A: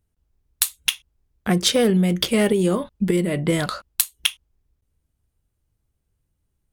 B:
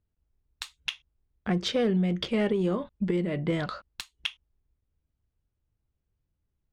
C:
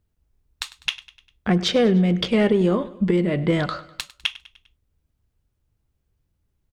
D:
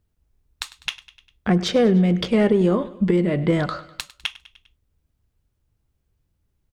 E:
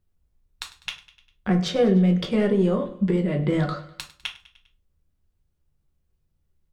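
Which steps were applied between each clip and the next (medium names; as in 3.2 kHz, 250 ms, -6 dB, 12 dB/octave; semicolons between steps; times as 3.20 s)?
distance through air 160 m; in parallel at -8 dB: saturation -16.5 dBFS, distortion -14 dB; on the sum: trim -9 dB
feedback delay 100 ms, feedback 51%, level -18.5 dB; trim +7.5 dB
dynamic bell 3.1 kHz, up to -5 dB, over -36 dBFS, Q 0.97; trim +1 dB
simulated room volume 150 m³, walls furnished, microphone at 1 m; trim -5.5 dB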